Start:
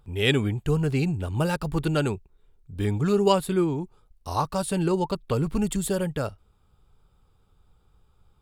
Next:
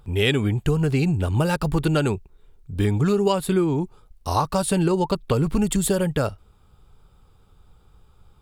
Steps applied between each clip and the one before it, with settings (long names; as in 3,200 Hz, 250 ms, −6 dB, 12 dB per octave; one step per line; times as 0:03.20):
downward compressor 6 to 1, threshold −24 dBFS, peak gain reduction 9.5 dB
level +7.5 dB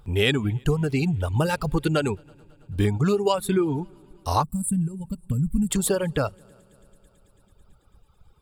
echo machine with several playback heads 110 ms, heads second and third, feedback 62%, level −22 dB
gain on a spectral selection 0:04.43–0:05.71, 270–7,300 Hz −21 dB
reverb reduction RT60 1.9 s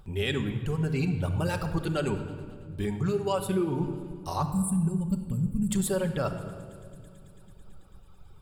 reversed playback
downward compressor 6 to 1, threshold −30 dBFS, peak gain reduction 13.5 dB
reversed playback
rectangular room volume 2,600 cubic metres, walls mixed, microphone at 1.1 metres
level +2.5 dB